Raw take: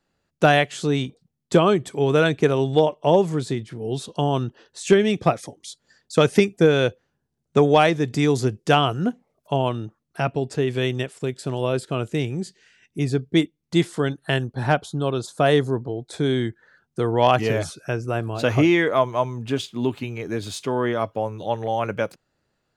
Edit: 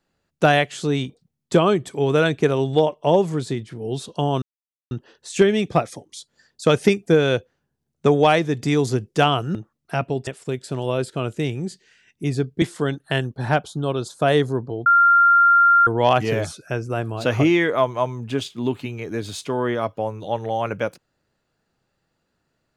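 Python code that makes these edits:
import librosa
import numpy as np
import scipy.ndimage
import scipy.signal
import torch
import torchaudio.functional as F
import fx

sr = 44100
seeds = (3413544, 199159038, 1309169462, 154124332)

y = fx.edit(x, sr, fx.insert_silence(at_s=4.42, length_s=0.49),
    fx.cut(start_s=9.06, length_s=0.75),
    fx.cut(start_s=10.53, length_s=0.49),
    fx.cut(start_s=13.37, length_s=0.43),
    fx.bleep(start_s=16.04, length_s=1.01, hz=1390.0, db=-10.5), tone=tone)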